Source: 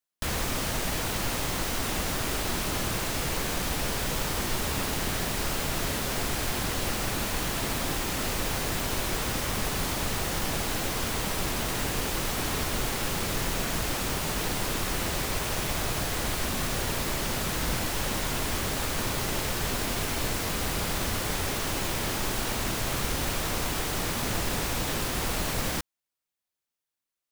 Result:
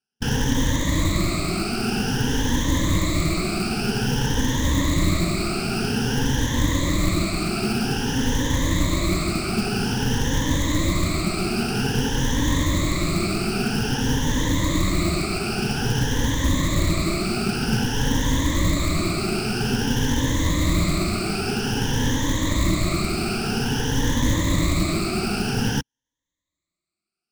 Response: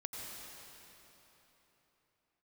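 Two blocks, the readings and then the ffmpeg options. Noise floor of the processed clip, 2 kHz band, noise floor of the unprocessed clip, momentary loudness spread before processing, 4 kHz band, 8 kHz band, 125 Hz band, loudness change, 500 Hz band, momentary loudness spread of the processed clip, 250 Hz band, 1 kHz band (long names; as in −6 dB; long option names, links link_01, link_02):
below −85 dBFS, +4.0 dB, below −85 dBFS, 0 LU, +4.5 dB, +2.0 dB, +11.0 dB, +6.0 dB, +5.5 dB, 2 LU, +12.0 dB, +3.0 dB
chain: -af "afftfilt=real='re*pow(10,19/40*sin(2*PI*(1.1*log(max(b,1)*sr/1024/100)/log(2)-(0.51)*(pts-256)/sr)))':imag='im*pow(10,19/40*sin(2*PI*(1.1*log(max(b,1)*sr/1024/100)/log(2)-(0.51)*(pts-256)/sr)))':win_size=1024:overlap=0.75,afftfilt=real='re*lt(hypot(re,im),0.708)':imag='im*lt(hypot(re,im),0.708)':win_size=1024:overlap=0.75,lowpass=frequency=7900:width=0.5412,lowpass=frequency=7900:width=1.3066,lowshelf=frequency=400:width_type=q:width=1.5:gain=7.5,acrusher=bits=4:mode=log:mix=0:aa=0.000001"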